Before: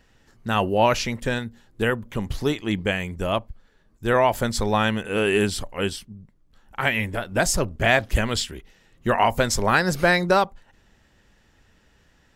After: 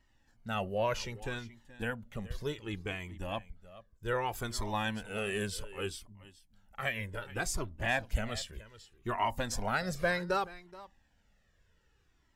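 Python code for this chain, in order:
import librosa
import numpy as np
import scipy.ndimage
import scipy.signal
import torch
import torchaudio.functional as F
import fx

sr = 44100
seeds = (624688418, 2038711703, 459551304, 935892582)

y = fx.high_shelf(x, sr, hz=5400.0, db=5.0, at=(4.26, 6.92))
y = y + 10.0 ** (-17.5 / 20.0) * np.pad(y, (int(426 * sr / 1000.0), 0))[:len(y)]
y = fx.comb_cascade(y, sr, direction='falling', hz=0.65)
y = F.gain(torch.from_numpy(y), -8.5).numpy()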